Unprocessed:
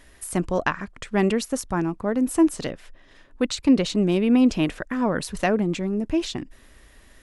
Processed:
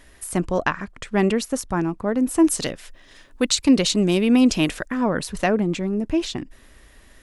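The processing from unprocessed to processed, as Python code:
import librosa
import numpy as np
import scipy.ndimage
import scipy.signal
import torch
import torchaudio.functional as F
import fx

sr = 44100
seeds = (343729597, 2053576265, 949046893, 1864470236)

y = fx.high_shelf(x, sr, hz=3400.0, db=11.5, at=(2.44, 4.88))
y = y * 10.0 ** (1.5 / 20.0)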